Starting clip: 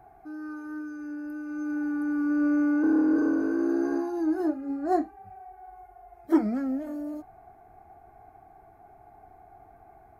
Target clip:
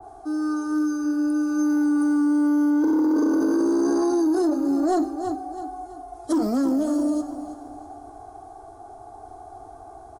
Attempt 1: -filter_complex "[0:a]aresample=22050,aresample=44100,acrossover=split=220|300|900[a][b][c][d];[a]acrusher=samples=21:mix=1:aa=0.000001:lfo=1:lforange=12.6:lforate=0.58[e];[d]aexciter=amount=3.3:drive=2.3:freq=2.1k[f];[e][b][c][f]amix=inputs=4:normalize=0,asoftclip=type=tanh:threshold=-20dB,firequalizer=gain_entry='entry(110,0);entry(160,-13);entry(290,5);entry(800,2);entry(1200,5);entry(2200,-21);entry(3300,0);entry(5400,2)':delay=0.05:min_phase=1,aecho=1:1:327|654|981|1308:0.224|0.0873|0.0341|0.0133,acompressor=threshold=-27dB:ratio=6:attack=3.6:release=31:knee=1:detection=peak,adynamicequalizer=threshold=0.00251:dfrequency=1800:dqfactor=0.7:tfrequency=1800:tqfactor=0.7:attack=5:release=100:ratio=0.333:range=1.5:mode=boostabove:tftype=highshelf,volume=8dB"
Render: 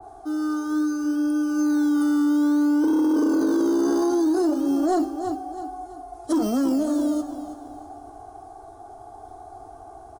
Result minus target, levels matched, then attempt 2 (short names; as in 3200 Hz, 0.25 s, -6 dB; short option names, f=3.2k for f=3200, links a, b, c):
decimation with a swept rate: distortion +16 dB
-filter_complex "[0:a]aresample=22050,aresample=44100,acrossover=split=220|300|900[a][b][c][d];[a]acrusher=samples=4:mix=1:aa=0.000001:lfo=1:lforange=2.4:lforate=0.58[e];[d]aexciter=amount=3.3:drive=2.3:freq=2.1k[f];[e][b][c][f]amix=inputs=4:normalize=0,asoftclip=type=tanh:threshold=-20dB,firequalizer=gain_entry='entry(110,0);entry(160,-13);entry(290,5);entry(800,2);entry(1200,5);entry(2200,-21);entry(3300,0);entry(5400,2)':delay=0.05:min_phase=1,aecho=1:1:327|654|981|1308:0.224|0.0873|0.0341|0.0133,acompressor=threshold=-27dB:ratio=6:attack=3.6:release=31:knee=1:detection=peak,adynamicequalizer=threshold=0.00251:dfrequency=1800:dqfactor=0.7:tfrequency=1800:tqfactor=0.7:attack=5:release=100:ratio=0.333:range=1.5:mode=boostabove:tftype=highshelf,volume=8dB"